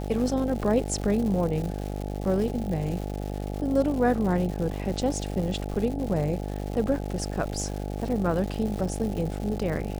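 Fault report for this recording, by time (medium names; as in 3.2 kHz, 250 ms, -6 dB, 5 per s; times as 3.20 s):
buzz 50 Hz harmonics 17 -32 dBFS
crackle 270 per s -33 dBFS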